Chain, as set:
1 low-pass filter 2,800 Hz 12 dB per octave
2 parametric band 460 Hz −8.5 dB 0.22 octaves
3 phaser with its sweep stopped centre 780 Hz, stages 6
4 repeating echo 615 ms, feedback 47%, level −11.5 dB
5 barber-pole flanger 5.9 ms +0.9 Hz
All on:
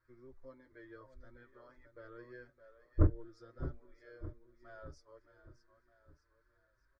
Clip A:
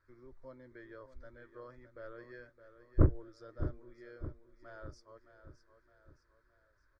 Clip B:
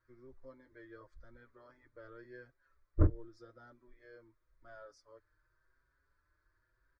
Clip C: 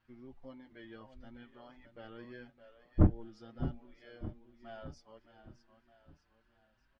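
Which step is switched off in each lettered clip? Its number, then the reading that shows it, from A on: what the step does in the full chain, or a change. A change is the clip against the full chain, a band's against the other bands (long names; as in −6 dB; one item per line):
5, change in momentary loudness spread −3 LU
4, change in momentary loudness spread −4 LU
3, 250 Hz band +4.0 dB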